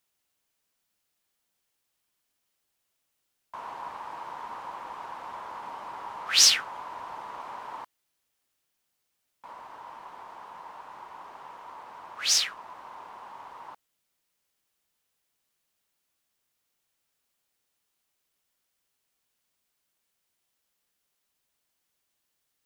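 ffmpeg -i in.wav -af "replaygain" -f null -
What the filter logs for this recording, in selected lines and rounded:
track_gain = +24.3 dB
track_peak = 0.395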